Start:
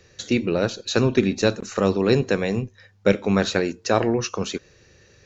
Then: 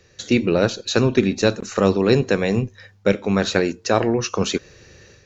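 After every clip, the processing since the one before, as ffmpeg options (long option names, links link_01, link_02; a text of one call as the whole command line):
ffmpeg -i in.wav -af "dynaudnorm=framelen=170:gausssize=3:maxgain=8dB,volume=-1dB" out.wav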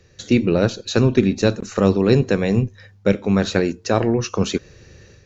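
ffmpeg -i in.wav -af "lowshelf=frequency=300:gain=7.5,volume=-2.5dB" out.wav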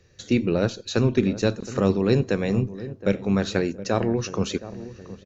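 ffmpeg -i in.wav -filter_complex "[0:a]asplit=2[link_01][link_02];[link_02]adelay=718,lowpass=frequency=860:poles=1,volume=-14dB,asplit=2[link_03][link_04];[link_04]adelay=718,lowpass=frequency=860:poles=1,volume=0.5,asplit=2[link_05][link_06];[link_06]adelay=718,lowpass=frequency=860:poles=1,volume=0.5,asplit=2[link_07][link_08];[link_08]adelay=718,lowpass=frequency=860:poles=1,volume=0.5,asplit=2[link_09][link_10];[link_10]adelay=718,lowpass=frequency=860:poles=1,volume=0.5[link_11];[link_01][link_03][link_05][link_07][link_09][link_11]amix=inputs=6:normalize=0,volume=-5dB" out.wav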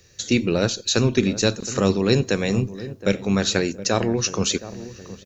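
ffmpeg -i in.wav -af "crystalizer=i=4:c=0,volume=1dB" out.wav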